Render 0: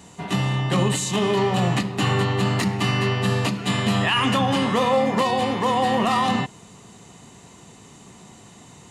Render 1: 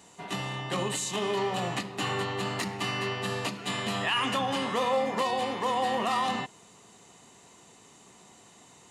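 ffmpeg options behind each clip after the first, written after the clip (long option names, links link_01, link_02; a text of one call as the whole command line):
ffmpeg -i in.wav -af "bass=frequency=250:gain=-10,treble=frequency=4000:gain=1,volume=-6.5dB" out.wav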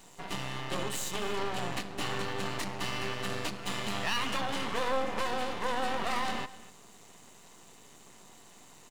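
ffmpeg -i in.wav -filter_complex "[0:a]asplit=2[link_01][link_02];[link_02]acompressor=threshold=-38dB:ratio=6,volume=-2dB[link_03];[link_01][link_03]amix=inputs=2:normalize=0,aeval=exprs='max(val(0),0)':channel_layout=same,aecho=1:1:246:0.126,volume=-1.5dB" out.wav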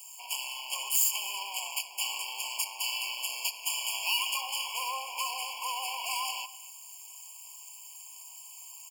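ffmpeg -i in.wav -af "highpass=frequency=950:width=0.5412,highpass=frequency=950:width=1.3066,aemphasis=mode=production:type=75fm,afftfilt=real='re*eq(mod(floor(b*sr/1024/1100),2),0)':imag='im*eq(mod(floor(b*sr/1024/1100),2),0)':win_size=1024:overlap=0.75,volume=2.5dB" out.wav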